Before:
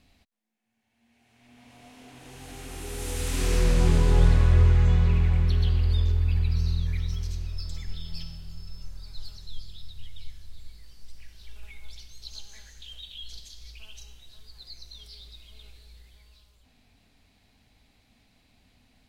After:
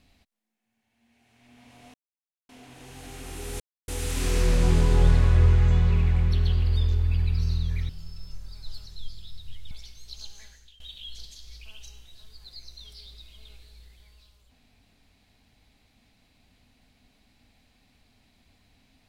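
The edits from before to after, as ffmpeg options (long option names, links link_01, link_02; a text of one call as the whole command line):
ffmpeg -i in.wav -filter_complex "[0:a]asplit=6[link_01][link_02][link_03][link_04][link_05][link_06];[link_01]atrim=end=1.94,asetpts=PTS-STARTPTS,afade=type=out:start_time=1.936:duration=0.004:curve=hsin,apad=pad_dur=0.55[link_07];[link_02]atrim=start=1.94:end=3.05,asetpts=PTS-STARTPTS,afade=type=in:duration=0.004:curve=hsin,afade=type=out:start_time=1.106:duration=0.004:curve=hsin,apad=pad_dur=0.28[link_08];[link_03]atrim=start=3.05:end=7.062,asetpts=PTS-STARTPTS,afade=type=in:duration=0.004:curve=hsin[link_09];[link_04]atrim=start=8.398:end=10.222[link_10];[link_05]atrim=start=11.848:end=12.94,asetpts=PTS-STARTPTS,afade=type=out:start_time=0.682:duration=0.41:silence=0.11885[link_11];[link_06]atrim=start=12.94,asetpts=PTS-STARTPTS,afade=type=in:duration=0.004:curve=hsin:silence=0.11885[link_12];[link_07][link_08][link_09]concat=n=3:v=0:a=1[link_13];[link_13][link_10]acrossfade=duration=0.004:curve1=hsin:curve2=hsin[link_14];[link_11][link_12]concat=n=2:v=0:a=1[link_15];[link_14][link_15]acrossfade=duration=0.004:curve1=hsin:curve2=hsin" out.wav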